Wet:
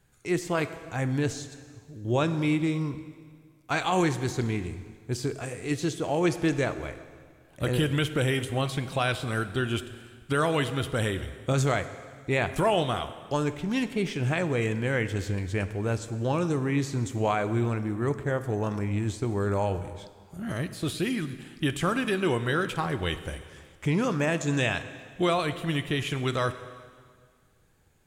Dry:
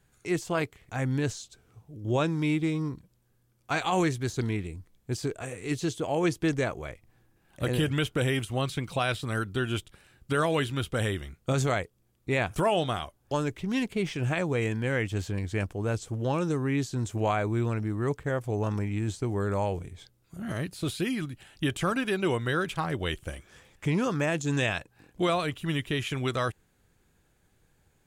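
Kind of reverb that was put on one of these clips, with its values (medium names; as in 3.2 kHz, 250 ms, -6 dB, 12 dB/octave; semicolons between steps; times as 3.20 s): plate-style reverb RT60 1.9 s, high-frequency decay 0.9×, DRR 10.5 dB; trim +1 dB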